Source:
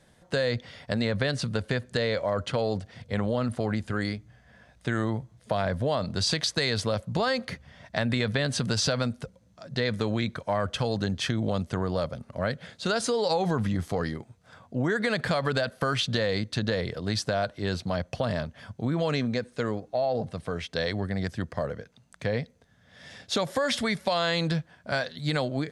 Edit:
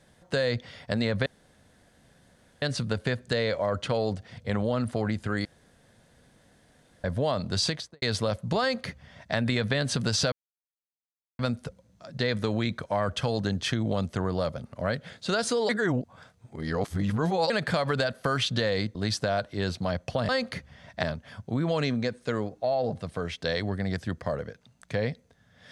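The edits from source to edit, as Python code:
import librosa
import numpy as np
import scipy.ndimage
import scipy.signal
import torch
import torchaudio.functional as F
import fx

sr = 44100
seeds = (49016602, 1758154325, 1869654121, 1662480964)

y = fx.studio_fade_out(x, sr, start_s=6.26, length_s=0.4)
y = fx.edit(y, sr, fx.insert_room_tone(at_s=1.26, length_s=1.36),
    fx.room_tone_fill(start_s=4.09, length_s=1.59),
    fx.duplicate(start_s=7.25, length_s=0.74, to_s=18.34),
    fx.insert_silence(at_s=8.96, length_s=1.07),
    fx.reverse_span(start_s=13.26, length_s=1.81),
    fx.cut(start_s=16.52, length_s=0.48), tone=tone)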